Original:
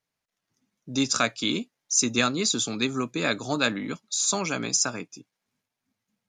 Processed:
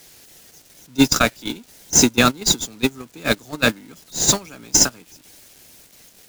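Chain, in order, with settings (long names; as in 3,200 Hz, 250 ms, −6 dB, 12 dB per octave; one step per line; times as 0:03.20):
spike at every zero crossing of −22 dBFS
noise gate −21 dBFS, range −26 dB
high-shelf EQ 7,300 Hz −7.5 dB
in parallel at −9.5 dB: sample-rate reduction 1,200 Hz, jitter 0%
on the sum: boost into a limiter +14.5 dB
level −1 dB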